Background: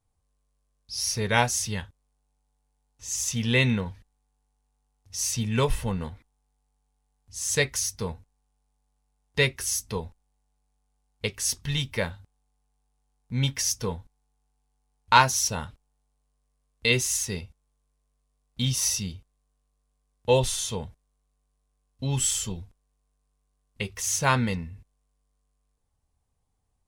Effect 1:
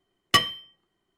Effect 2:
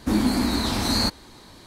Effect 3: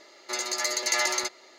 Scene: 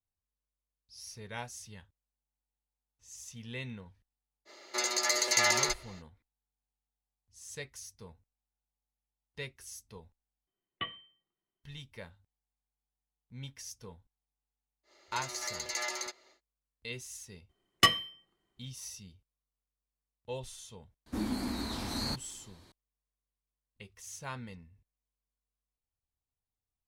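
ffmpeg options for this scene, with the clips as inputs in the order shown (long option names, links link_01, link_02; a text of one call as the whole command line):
ffmpeg -i bed.wav -i cue0.wav -i cue1.wav -i cue2.wav -filter_complex "[3:a]asplit=2[link_01][link_02];[1:a]asplit=2[link_03][link_04];[0:a]volume=-19dB[link_05];[link_03]aresample=8000,aresample=44100[link_06];[link_05]asplit=2[link_07][link_08];[link_07]atrim=end=10.474[link_09];[link_06]atrim=end=1.17,asetpts=PTS-STARTPTS,volume=-18dB[link_10];[link_08]atrim=start=11.636[link_11];[link_01]atrim=end=1.58,asetpts=PTS-STARTPTS,volume=-1dB,afade=type=in:duration=0.05,afade=type=out:start_time=1.53:duration=0.05,adelay=196245S[link_12];[link_02]atrim=end=1.58,asetpts=PTS-STARTPTS,volume=-10.5dB,afade=type=in:duration=0.1,afade=type=out:start_time=1.48:duration=0.1,adelay=14830[link_13];[link_04]atrim=end=1.17,asetpts=PTS-STARTPTS,volume=-3.5dB,afade=type=in:duration=0.004:curve=hsin,afade=type=out:start_time=1.166:duration=0.004:curve=hsin,adelay=17490[link_14];[2:a]atrim=end=1.66,asetpts=PTS-STARTPTS,volume=-13dB,afade=type=in:duration=0.004:curve=hsin,afade=type=out:start_time=1.656:duration=0.004:curve=hsin,adelay=21060[link_15];[link_09][link_10]acrossfade=duration=0.004:curve1=hsin:curve2=hsin[link_16];[link_16][link_11]acrossfade=duration=0.004:curve1=hsin:curve2=hsin[link_17];[link_17][link_12][link_13][link_14][link_15]amix=inputs=5:normalize=0" out.wav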